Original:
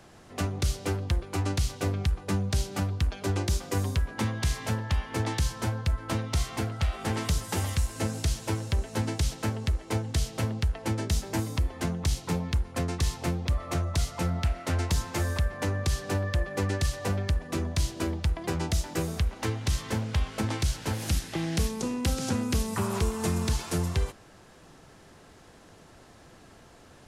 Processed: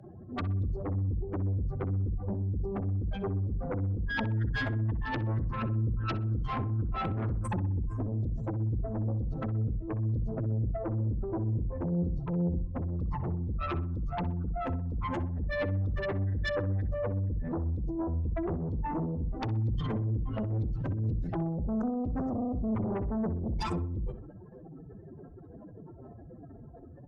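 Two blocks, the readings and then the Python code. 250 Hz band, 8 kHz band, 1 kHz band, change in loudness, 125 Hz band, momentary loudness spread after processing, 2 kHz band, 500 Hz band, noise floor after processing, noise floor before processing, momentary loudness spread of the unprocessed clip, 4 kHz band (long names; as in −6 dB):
−1.0 dB, below −25 dB, −2.5 dB, −2.5 dB, −1.5 dB, 10 LU, −4.0 dB, −2.0 dB, −49 dBFS, −53 dBFS, 3 LU, −14.0 dB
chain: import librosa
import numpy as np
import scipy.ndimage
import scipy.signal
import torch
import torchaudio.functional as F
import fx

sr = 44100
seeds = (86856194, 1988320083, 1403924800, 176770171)

p1 = fx.spec_expand(x, sr, power=3.9)
p2 = fx.highpass(p1, sr, hz=60.0, slope=6)
p3 = fx.dynamic_eq(p2, sr, hz=460.0, q=1.0, threshold_db=-48.0, ratio=4.0, max_db=-5)
p4 = fx.over_compress(p3, sr, threshold_db=-37.0, ratio=-1.0)
p5 = p3 + (p4 * librosa.db_to_amplitude(3.0))
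p6 = fx.cheby_harmonics(p5, sr, harmonics=(3, 5, 6, 8), levels_db=(-7, -11, -21, -36), full_scale_db=-16.5)
p7 = p6 + fx.echo_filtered(p6, sr, ms=63, feedback_pct=54, hz=1400.0, wet_db=-10, dry=0)
y = fx.band_widen(p7, sr, depth_pct=40)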